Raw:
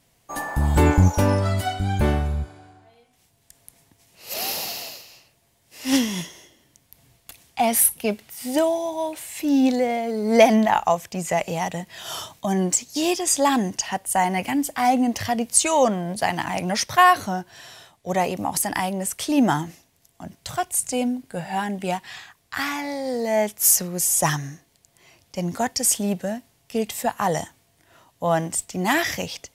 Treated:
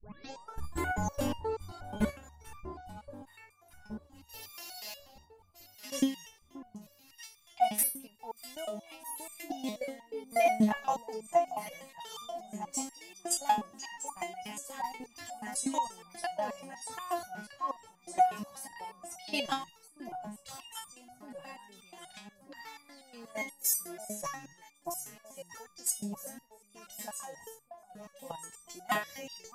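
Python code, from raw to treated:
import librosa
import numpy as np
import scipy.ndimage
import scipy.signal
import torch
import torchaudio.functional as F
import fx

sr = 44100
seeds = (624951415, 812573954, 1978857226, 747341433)

p1 = fx.tape_start_head(x, sr, length_s=0.63)
p2 = fx.spec_box(p1, sr, start_s=19.19, length_s=0.51, low_hz=1900.0, high_hz=5400.0, gain_db=11)
p3 = fx.level_steps(p2, sr, step_db=19)
p4 = p3 + fx.echo_alternate(p3, sr, ms=631, hz=1100.0, feedback_pct=66, wet_db=-7.5, dry=0)
p5 = fx.resonator_held(p4, sr, hz=8.3, low_hz=210.0, high_hz=1200.0)
y = p5 * 10.0 ** (8.0 / 20.0)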